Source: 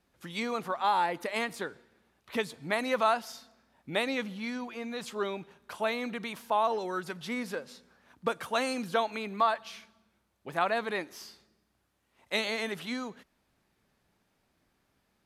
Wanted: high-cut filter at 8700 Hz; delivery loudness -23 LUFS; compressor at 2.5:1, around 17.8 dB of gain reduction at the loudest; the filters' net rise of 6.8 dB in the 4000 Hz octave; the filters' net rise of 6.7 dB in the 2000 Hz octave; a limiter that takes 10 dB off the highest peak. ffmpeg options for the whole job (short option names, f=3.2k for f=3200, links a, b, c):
-af "lowpass=8.7k,equalizer=f=2k:t=o:g=6.5,equalizer=f=4k:t=o:g=6,acompressor=threshold=-48dB:ratio=2.5,volume=23dB,alimiter=limit=-11.5dB:level=0:latency=1"